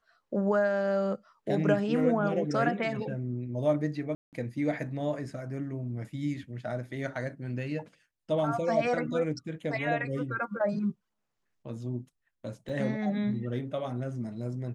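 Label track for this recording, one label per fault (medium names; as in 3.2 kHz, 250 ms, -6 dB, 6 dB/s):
4.150000	4.330000	dropout 178 ms
12.690000	12.690000	dropout 4.2 ms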